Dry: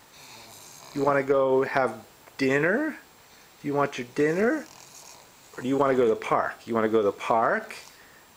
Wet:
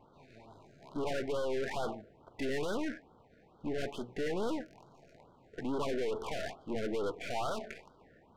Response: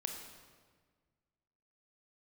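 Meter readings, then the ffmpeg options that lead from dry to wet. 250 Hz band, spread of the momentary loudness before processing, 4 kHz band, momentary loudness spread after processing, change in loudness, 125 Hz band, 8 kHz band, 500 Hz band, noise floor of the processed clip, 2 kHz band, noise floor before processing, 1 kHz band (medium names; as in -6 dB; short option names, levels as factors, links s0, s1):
-10.5 dB, 21 LU, -4.0 dB, 15 LU, -12.0 dB, -10.0 dB, -8.5 dB, -12.0 dB, -63 dBFS, -14.5 dB, -54 dBFS, -14.0 dB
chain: -af "aeval=exprs='(tanh(39.8*val(0)+0.55)-tanh(0.55))/39.8':c=same,adynamicsmooth=sensitivity=7.5:basefreq=920,afftfilt=real='re*(1-between(b*sr/1024,950*pow(2200/950,0.5+0.5*sin(2*PI*2.3*pts/sr))/1.41,950*pow(2200/950,0.5+0.5*sin(2*PI*2.3*pts/sr))*1.41))':imag='im*(1-between(b*sr/1024,950*pow(2200/950,0.5+0.5*sin(2*PI*2.3*pts/sr))/1.41,950*pow(2200/950,0.5+0.5*sin(2*PI*2.3*pts/sr))*1.41))':win_size=1024:overlap=0.75"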